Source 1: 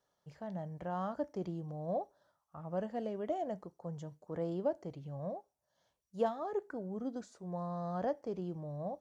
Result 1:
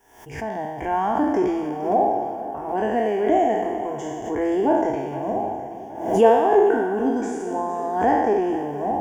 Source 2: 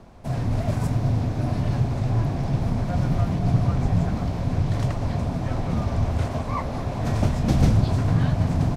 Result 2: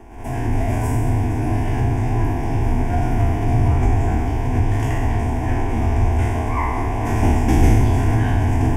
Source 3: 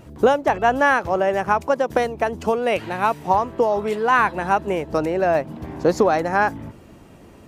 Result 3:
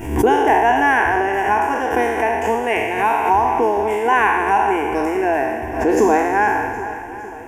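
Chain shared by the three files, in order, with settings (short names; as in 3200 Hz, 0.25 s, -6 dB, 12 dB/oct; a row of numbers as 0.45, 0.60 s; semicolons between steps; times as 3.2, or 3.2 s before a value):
spectral trails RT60 1.46 s; fixed phaser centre 840 Hz, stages 8; on a send: swung echo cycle 0.77 s, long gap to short 1.5:1, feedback 38%, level -14 dB; on the sum: backwards sustainer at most 83 dB/s; normalise peaks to -3 dBFS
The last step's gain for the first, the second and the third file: +18.0, +5.5, +2.0 dB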